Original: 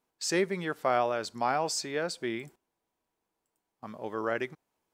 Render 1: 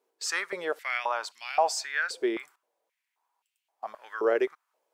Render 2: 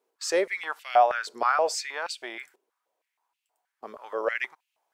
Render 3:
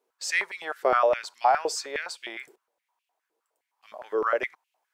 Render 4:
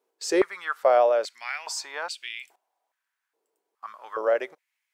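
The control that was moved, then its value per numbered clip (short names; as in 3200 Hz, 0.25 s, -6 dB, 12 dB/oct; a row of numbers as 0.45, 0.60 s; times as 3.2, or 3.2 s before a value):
stepped high-pass, rate: 3.8, 6.3, 9.7, 2.4 Hz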